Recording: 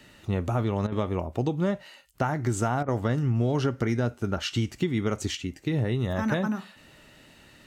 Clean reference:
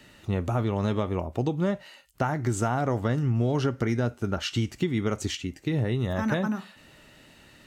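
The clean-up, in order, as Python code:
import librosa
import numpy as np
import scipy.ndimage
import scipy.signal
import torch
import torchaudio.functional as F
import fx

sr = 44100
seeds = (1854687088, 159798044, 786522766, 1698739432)

y = fx.fix_interpolate(x, sr, at_s=(0.87, 2.83), length_ms=50.0)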